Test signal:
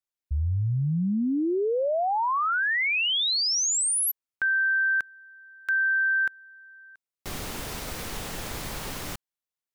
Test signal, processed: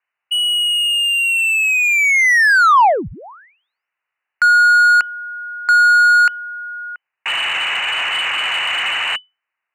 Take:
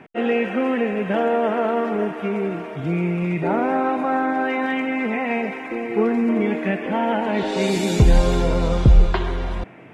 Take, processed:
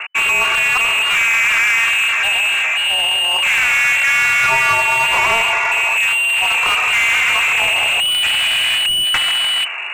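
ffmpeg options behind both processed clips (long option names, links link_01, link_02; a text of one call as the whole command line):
ffmpeg -i in.wav -filter_complex "[0:a]lowpass=frequency=2600:width_type=q:width=0.5098,lowpass=frequency=2600:width_type=q:width=0.6013,lowpass=frequency=2600:width_type=q:width=0.9,lowpass=frequency=2600:width_type=q:width=2.563,afreqshift=-3000,asplit=2[link_01][link_02];[link_02]highpass=frequency=720:poles=1,volume=23dB,asoftclip=type=tanh:threshold=-2.5dB[link_03];[link_01][link_03]amix=inputs=2:normalize=0,lowpass=frequency=1300:poles=1,volume=-6dB,acrossover=split=210|1200[link_04][link_05][link_06];[link_06]asoftclip=type=tanh:threshold=-24dB[link_07];[link_04][link_05][link_07]amix=inputs=3:normalize=0,equalizer=frequency=250:width_type=o:width=1:gain=-9,equalizer=frequency=500:width_type=o:width=1:gain=-7,equalizer=frequency=2000:width_type=o:width=1:gain=5,volume=6dB" out.wav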